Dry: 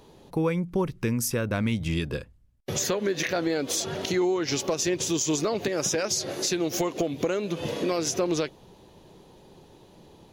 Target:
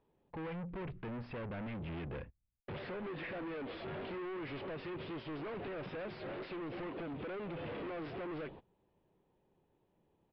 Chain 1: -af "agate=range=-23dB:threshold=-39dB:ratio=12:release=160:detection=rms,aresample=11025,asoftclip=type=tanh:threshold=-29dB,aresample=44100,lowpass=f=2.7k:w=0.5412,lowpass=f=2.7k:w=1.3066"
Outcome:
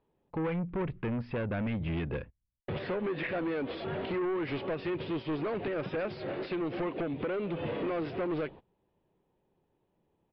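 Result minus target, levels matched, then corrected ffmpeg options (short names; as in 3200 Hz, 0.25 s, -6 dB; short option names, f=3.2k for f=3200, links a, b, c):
soft clip: distortion -5 dB
-af "agate=range=-23dB:threshold=-39dB:ratio=12:release=160:detection=rms,aresample=11025,asoftclip=type=tanh:threshold=-40.5dB,aresample=44100,lowpass=f=2.7k:w=0.5412,lowpass=f=2.7k:w=1.3066"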